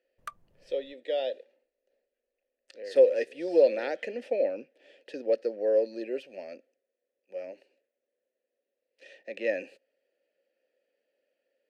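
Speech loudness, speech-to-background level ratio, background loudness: −28.5 LKFS, 17.5 dB, −46.0 LKFS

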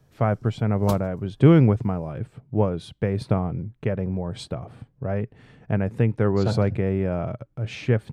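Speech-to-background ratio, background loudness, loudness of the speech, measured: 13.5 dB, −37.5 LKFS, −24.0 LKFS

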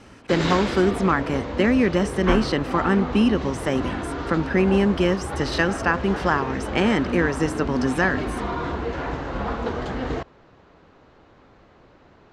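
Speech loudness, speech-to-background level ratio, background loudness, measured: −22.5 LKFS, 6.0 dB, −28.5 LKFS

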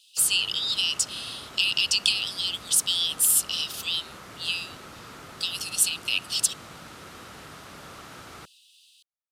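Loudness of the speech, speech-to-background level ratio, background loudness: −24.0 LKFS, 19.5 dB, −43.5 LKFS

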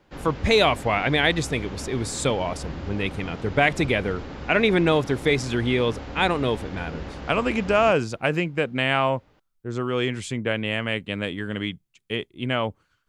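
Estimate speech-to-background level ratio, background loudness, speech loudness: 13.0 dB, −37.0 LKFS, −24.0 LKFS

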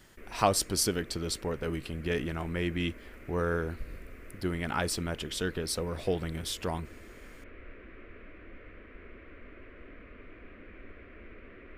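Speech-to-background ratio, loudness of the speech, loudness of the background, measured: 19.0 dB, −32.0 LKFS, −51.0 LKFS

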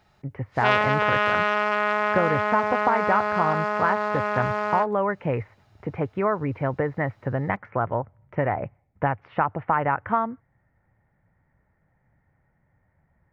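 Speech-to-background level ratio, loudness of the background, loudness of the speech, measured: −3.0 dB, −24.0 LKFS, −27.0 LKFS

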